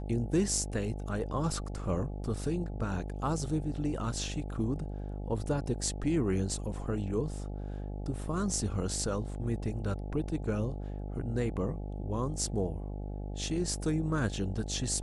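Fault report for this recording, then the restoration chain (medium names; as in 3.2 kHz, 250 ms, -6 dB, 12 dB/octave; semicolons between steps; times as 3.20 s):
buzz 50 Hz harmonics 17 -38 dBFS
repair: de-hum 50 Hz, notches 17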